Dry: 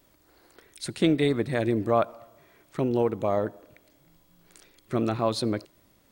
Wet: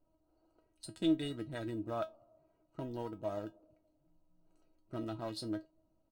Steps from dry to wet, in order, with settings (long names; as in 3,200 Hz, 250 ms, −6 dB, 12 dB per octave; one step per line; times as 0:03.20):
adaptive Wiener filter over 25 samples
high-shelf EQ 8,600 Hz +7.5 dB
notch filter 2,200 Hz, Q 6.6
comb filter 1.4 ms, depth 34%
dynamic equaliser 640 Hz, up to −4 dB, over −38 dBFS, Q 1.7
tuned comb filter 320 Hz, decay 0.16 s, harmonics all, mix 90%